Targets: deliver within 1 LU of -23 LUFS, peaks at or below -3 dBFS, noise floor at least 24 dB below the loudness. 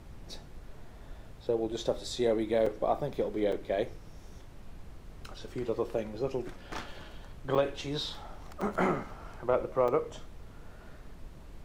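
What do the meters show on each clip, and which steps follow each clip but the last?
dropouts 5; longest dropout 4.5 ms; noise floor -50 dBFS; noise floor target -57 dBFS; loudness -32.5 LUFS; peak level -15.5 dBFS; loudness target -23.0 LUFS
-> interpolate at 2.66/3.52/7.55/8.61/9.88 s, 4.5 ms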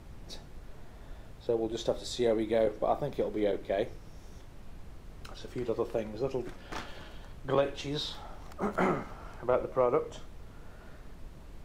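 dropouts 0; noise floor -50 dBFS; noise floor target -57 dBFS
-> noise print and reduce 7 dB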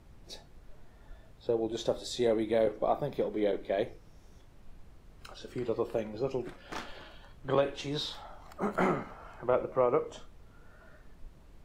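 noise floor -56 dBFS; noise floor target -57 dBFS
-> noise print and reduce 6 dB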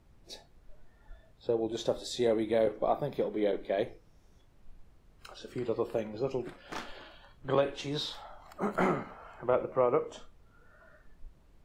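noise floor -61 dBFS; loudness -32.5 LUFS; peak level -15.5 dBFS; loudness target -23.0 LUFS
-> trim +9.5 dB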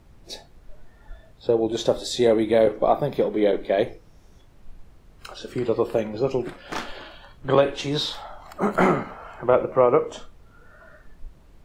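loudness -23.0 LUFS; peak level -6.0 dBFS; noise floor -52 dBFS

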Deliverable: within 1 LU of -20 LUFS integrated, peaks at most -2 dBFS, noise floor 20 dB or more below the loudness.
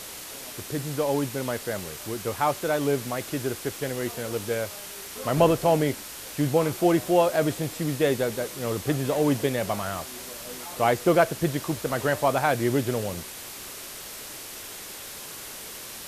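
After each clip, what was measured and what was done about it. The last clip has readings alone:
noise floor -40 dBFS; noise floor target -47 dBFS; loudness -27.0 LUFS; peak level -6.0 dBFS; loudness target -20.0 LUFS
-> noise reduction 7 dB, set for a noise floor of -40 dBFS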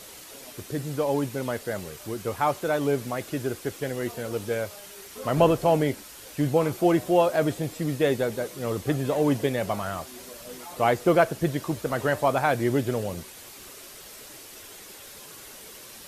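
noise floor -45 dBFS; noise floor target -46 dBFS
-> noise reduction 6 dB, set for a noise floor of -45 dBFS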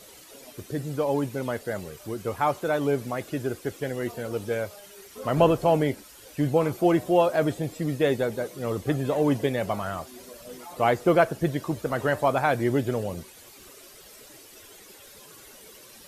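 noise floor -49 dBFS; loudness -26.0 LUFS; peak level -6.5 dBFS; loudness target -20.0 LUFS
-> trim +6 dB; peak limiter -2 dBFS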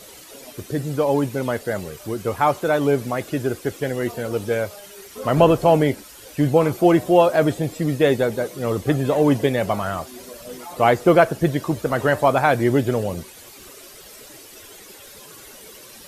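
loudness -20.0 LUFS; peak level -2.0 dBFS; noise floor -43 dBFS

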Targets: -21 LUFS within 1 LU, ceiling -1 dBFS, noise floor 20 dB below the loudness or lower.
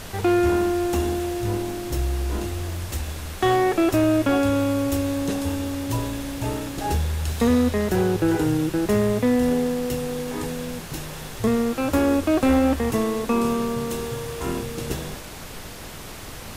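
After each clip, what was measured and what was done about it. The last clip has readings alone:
clipped samples 0.5%; clipping level -12.5 dBFS; noise floor -37 dBFS; noise floor target -44 dBFS; loudness -23.5 LUFS; peak level -12.5 dBFS; loudness target -21.0 LUFS
-> clip repair -12.5 dBFS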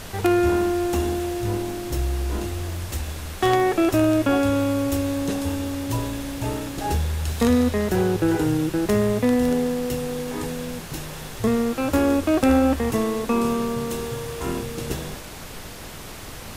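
clipped samples 0.0%; noise floor -37 dBFS; noise floor target -43 dBFS
-> noise print and reduce 6 dB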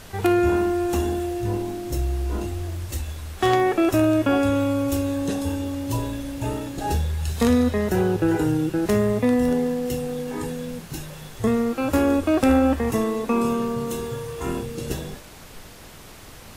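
noise floor -43 dBFS; loudness -23.0 LUFS; peak level -3.5 dBFS; loudness target -21.0 LUFS
-> trim +2 dB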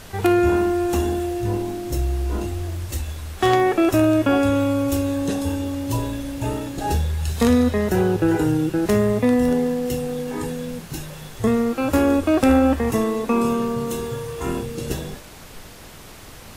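loudness -21.0 LUFS; peak level -1.5 dBFS; noise floor -41 dBFS

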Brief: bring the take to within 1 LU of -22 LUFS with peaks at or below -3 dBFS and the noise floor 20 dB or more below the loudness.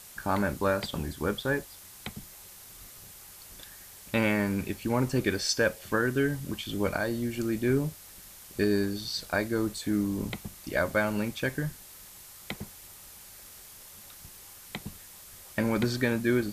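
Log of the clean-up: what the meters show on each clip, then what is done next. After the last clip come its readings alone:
noise floor -49 dBFS; noise floor target -50 dBFS; loudness -29.5 LUFS; peak level -14.5 dBFS; loudness target -22.0 LUFS
-> noise reduction 6 dB, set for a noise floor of -49 dBFS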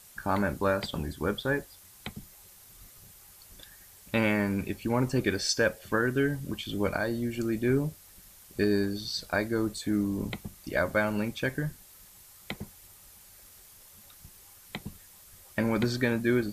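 noise floor -54 dBFS; loudness -29.5 LUFS; peak level -14.5 dBFS; loudness target -22.0 LUFS
-> trim +7.5 dB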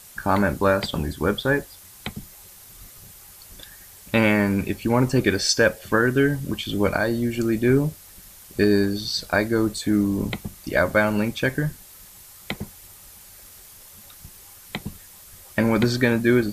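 loudness -22.0 LUFS; peak level -7.0 dBFS; noise floor -46 dBFS

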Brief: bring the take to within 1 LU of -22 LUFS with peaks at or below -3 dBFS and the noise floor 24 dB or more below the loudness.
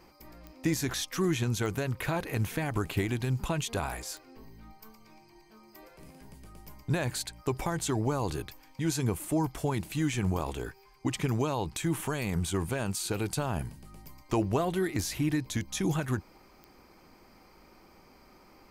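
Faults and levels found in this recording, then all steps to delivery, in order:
clicks found 4; loudness -31.5 LUFS; peak level -14.5 dBFS; loudness target -22.0 LUFS
-> de-click; trim +9.5 dB

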